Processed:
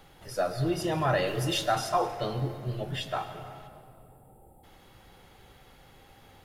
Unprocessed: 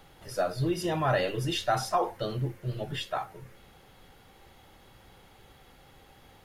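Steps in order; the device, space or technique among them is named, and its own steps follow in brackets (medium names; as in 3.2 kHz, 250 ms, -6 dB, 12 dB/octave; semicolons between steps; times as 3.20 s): 1.26–1.72 s: treble shelf 5.2 kHz +6.5 dB; 3.67–4.64 s: time-frequency box 930–7300 Hz -30 dB; saturated reverb return (on a send at -8 dB: reverberation RT60 2.2 s, pre-delay 107 ms + saturation -26 dBFS, distortion -13 dB)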